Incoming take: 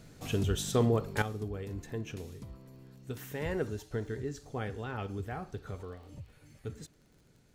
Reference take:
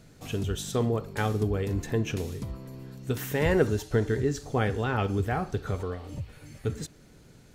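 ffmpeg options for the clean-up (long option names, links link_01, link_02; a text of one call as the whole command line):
ffmpeg -i in.wav -af "adeclick=threshold=4,asetnsamples=nb_out_samples=441:pad=0,asendcmd='1.22 volume volume 10.5dB',volume=0dB" out.wav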